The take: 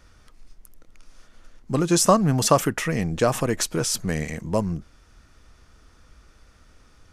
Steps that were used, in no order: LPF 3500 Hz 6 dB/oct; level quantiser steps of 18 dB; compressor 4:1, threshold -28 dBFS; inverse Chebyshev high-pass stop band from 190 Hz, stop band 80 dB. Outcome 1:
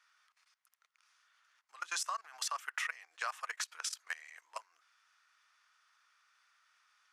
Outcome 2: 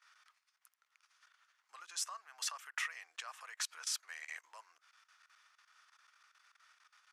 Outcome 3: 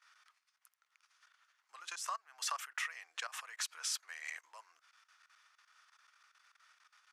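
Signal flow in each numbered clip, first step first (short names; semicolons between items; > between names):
inverse Chebyshev high-pass > compressor > LPF > level quantiser; LPF > compressor > level quantiser > inverse Chebyshev high-pass; LPF > level quantiser > compressor > inverse Chebyshev high-pass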